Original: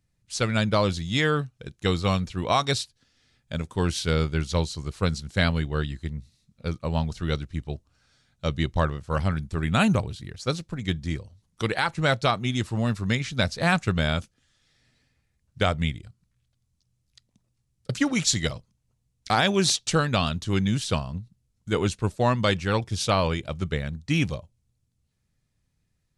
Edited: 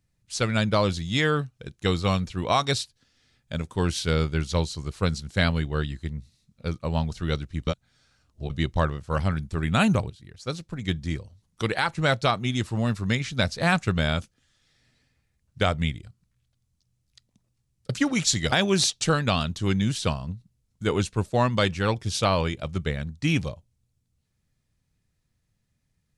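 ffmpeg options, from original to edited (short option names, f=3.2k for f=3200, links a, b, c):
-filter_complex "[0:a]asplit=5[a][b][c][d][e];[a]atrim=end=7.672[f];[b]atrim=start=7.668:end=8.502,asetpts=PTS-STARTPTS,areverse[g];[c]atrim=start=8.498:end=10.1,asetpts=PTS-STARTPTS,afade=t=out:st=1.598:d=0.004:c=hsin:silence=0.211349[h];[d]atrim=start=10.1:end=18.522,asetpts=PTS-STARTPTS,afade=t=in:d=0.8:silence=0.211349[i];[e]atrim=start=19.378[j];[f][g]acrossfade=d=0.004:c1=hsin:c2=hsin[k];[h][i]concat=n=2:v=0:a=1[l];[k][l]acrossfade=d=0.004:c1=hsin:c2=hsin[m];[m][j]acrossfade=d=0.004:c1=hsin:c2=hsin"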